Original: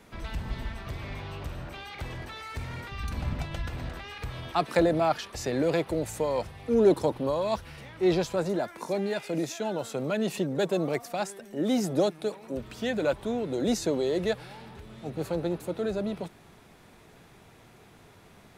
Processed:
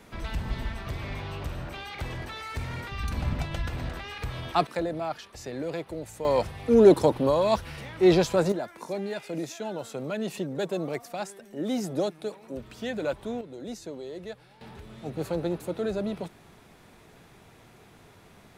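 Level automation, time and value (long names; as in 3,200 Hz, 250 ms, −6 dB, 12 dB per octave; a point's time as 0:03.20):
+2.5 dB
from 0:04.67 −7 dB
from 0:06.25 +5 dB
from 0:08.52 −3 dB
from 0:13.41 −11.5 dB
from 0:14.61 +0.5 dB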